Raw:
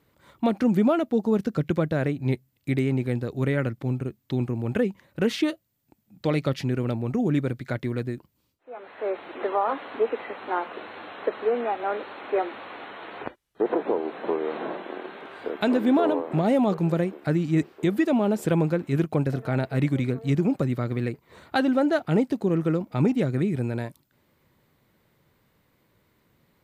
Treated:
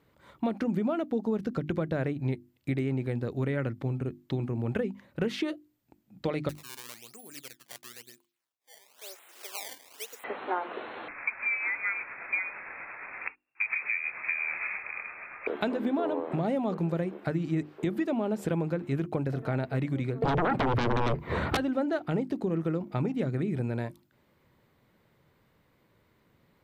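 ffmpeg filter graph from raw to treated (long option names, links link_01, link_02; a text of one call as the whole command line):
ffmpeg -i in.wav -filter_complex "[0:a]asettb=1/sr,asplit=3[link_01][link_02][link_03];[link_01]atrim=end=6.494[link_04];[link_02]atrim=start=6.49:end=10.24,asetpts=PTS-STARTPTS,afade=type=in:duration=0.004:curve=qsin,afade=type=out:start_time=3.746:duration=0.004:curve=qsin,acrusher=samples=19:mix=1:aa=0.000001:lfo=1:lforange=30.4:lforate=1,aderivative[link_05];[link_03]atrim=start=10.236[link_06];[link_04][link_05]acrossfade=duration=0.004:curve1=hsin:curve2=qsin[link_07];[link_07][link_06]acrossfade=duration=0.004:curve1=qsin:curve2=hsin,asettb=1/sr,asplit=3[link_08][link_09][link_10];[link_08]atrim=end=11.084[link_11];[link_09]atrim=start=11.08:end=15.47,asetpts=PTS-STARTPTS,afade=type=in:duration=0.004:curve=qsin,afade=type=out:start_time=4.386:duration=0.004:curve=qsin,lowpass=frequency=2400:width_type=q:width=0.5098,lowpass=frequency=2400:width_type=q:width=0.6013,lowpass=frequency=2400:width_type=q:width=0.9,lowpass=frequency=2400:width_type=q:width=2.563,afreqshift=-2800,tremolo=f=8.7:d=0.29[link_12];[link_10]atrim=start=15.466[link_13];[link_11][link_12]acrossfade=duration=0.004:curve1=hsin:curve2=qsin[link_14];[link_14][link_13]acrossfade=duration=0.004:curve1=qsin:curve2=hsin,asettb=1/sr,asplit=3[link_15][link_16][link_17];[link_15]atrim=end=20.224[link_18];[link_16]atrim=start=20.22:end=21.57,asetpts=PTS-STARTPTS,afade=type=in:duration=0.004:curve=qsin,afade=type=out:start_time=1.346:duration=0.004:curve=qsin,bass=frequency=250:gain=7,treble=frequency=4000:gain=-14,acompressor=threshold=-21dB:ratio=6:attack=3.2:release=140:knee=1:detection=peak,aeval=exprs='0.224*sin(PI/2*7.94*val(0)/0.224)':channel_layout=same[link_19];[link_17]atrim=start=21.566[link_20];[link_18][link_19]acrossfade=duration=0.004:curve1=hsin:curve2=qsin[link_21];[link_21][link_20]acrossfade=duration=0.004:curve1=qsin:curve2=hsin,acompressor=threshold=-25dB:ratio=6,highshelf=frequency=5000:gain=-7.5,bandreject=frequency=50:width_type=h:width=6,bandreject=frequency=100:width_type=h:width=6,bandreject=frequency=150:width_type=h:width=6,bandreject=frequency=200:width_type=h:width=6,bandreject=frequency=250:width_type=h:width=6,bandreject=frequency=300:width_type=h:width=6,bandreject=frequency=350:width_type=h:width=6" out.wav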